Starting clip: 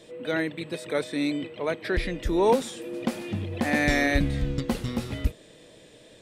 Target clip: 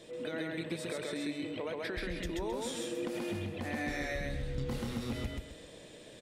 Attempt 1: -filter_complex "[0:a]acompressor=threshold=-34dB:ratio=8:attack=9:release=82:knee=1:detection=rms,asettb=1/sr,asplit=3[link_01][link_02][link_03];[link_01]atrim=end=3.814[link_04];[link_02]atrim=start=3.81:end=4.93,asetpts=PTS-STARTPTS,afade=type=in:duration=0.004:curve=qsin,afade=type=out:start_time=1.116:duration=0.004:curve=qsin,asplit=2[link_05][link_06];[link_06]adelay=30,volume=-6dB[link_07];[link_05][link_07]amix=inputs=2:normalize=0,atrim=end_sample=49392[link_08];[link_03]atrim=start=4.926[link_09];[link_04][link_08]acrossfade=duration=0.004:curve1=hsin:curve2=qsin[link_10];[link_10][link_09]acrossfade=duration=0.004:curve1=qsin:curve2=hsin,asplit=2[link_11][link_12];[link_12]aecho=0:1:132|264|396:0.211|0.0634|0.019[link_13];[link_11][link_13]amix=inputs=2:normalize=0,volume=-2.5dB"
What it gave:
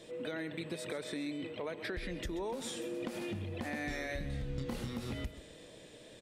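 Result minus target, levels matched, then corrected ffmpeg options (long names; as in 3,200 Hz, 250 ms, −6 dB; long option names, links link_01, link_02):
echo-to-direct −12 dB
-filter_complex "[0:a]acompressor=threshold=-34dB:ratio=8:attack=9:release=82:knee=1:detection=rms,asettb=1/sr,asplit=3[link_01][link_02][link_03];[link_01]atrim=end=3.814[link_04];[link_02]atrim=start=3.81:end=4.93,asetpts=PTS-STARTPTS,afade=type=in:duration=0.004:curve=qsin,afade=type=out:start_time=1.116:duration=0.004:curve=qsin,asplit=2[link_05][link_06];[link_06]adelay=30,volume=-6dB[link_07];[link_05][link_07]amix=inputs=2:normalize=0,atrim=end_sample=49392[link_08];[link_03]atrim=start=4.926[link_09];[link_04][link_08]acrossfade=duration=0.004:curve1=hsin:curve2=qsin[link_10];[link_10][link_09]acrossfade=duration=0.004:curve1=qsin:curve2=hsin,asplit=2[link_11][link_12];[link_12]aecho=0:1:132|264|396|528:0.841|0.252|0.0757|0.0227[link_13];[link_11][link_13]amix=inputs=2:normalize=0,volume=-2.5dB"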